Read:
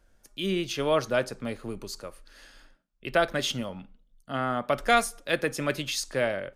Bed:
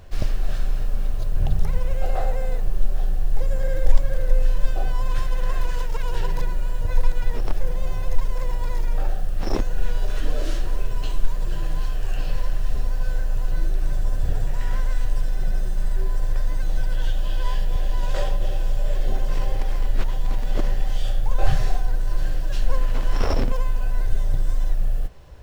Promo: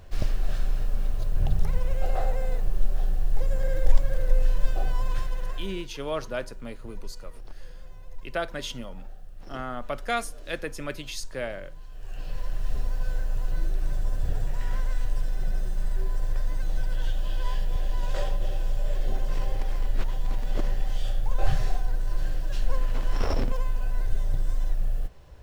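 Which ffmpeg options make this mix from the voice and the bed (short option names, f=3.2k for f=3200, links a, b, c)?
-filter_complex "[0:a]adelay=5200,volume=-6dB[a];[1:a]volume=12dB,afade=t=out:st=4.97:d=0.91:silence=0.149624,afade=t=in:st=11.88:d=0.85:silence=0.177828[b];[a][b]amix=inputs=2:normalize=0"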